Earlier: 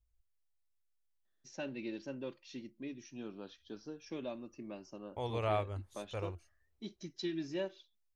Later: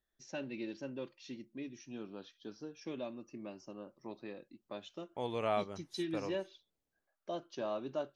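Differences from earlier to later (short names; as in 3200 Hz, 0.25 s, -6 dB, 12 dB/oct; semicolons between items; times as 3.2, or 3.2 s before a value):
first voice: entry -1.25 s; second voice: add resonant low shelf 120 Hz -12.5 dB, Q 3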